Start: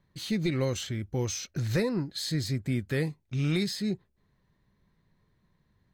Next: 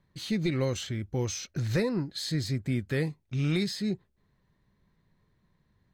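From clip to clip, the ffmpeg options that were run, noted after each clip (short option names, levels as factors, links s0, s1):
-af "highshelf=f=10000:g=-6"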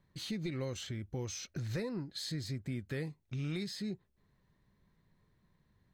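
-af "acompressor=threshold=0.0112:ratio=2,volume=0.794"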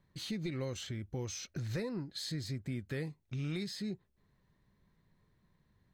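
-af anull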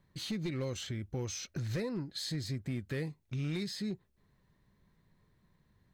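-af "volume=39.8,asoftclip=hard,volume=0.0251,volume=1.26"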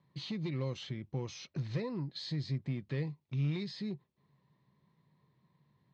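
-af "highpass=140,equalizer=f=140:t=q:w=4:g=10,equalizer=f=1000:t=q:w=4:g=6,equalizer=f=1500:t=q:w=4:g=-8,lowpass=f=4900:w=0.5412,lowpass=f=4900:w=1.3066,volume=0.794"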